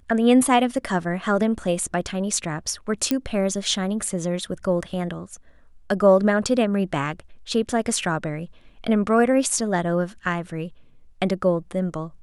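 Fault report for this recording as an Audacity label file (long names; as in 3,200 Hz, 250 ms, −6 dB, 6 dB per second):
3.110000	3.110000	click −8 dBFS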